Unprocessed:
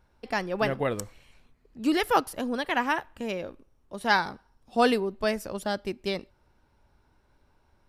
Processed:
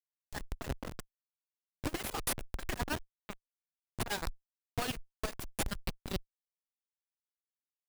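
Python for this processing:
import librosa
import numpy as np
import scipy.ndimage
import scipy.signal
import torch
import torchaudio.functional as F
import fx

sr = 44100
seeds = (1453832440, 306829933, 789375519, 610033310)

y = scipy.signal.lfilter([1.0, -0.97], [1.0], x)
y = fx.schmitt(y, sr, flips_db=-40.0)
y = fx.cheby_harmonics(y, sr, harmonics=(2, 3, 8), levels_db=(-7, -17, -9), full_scale_db=-39.0)
y = F.gain(torch.from_numpy(y), 11.5).numpy()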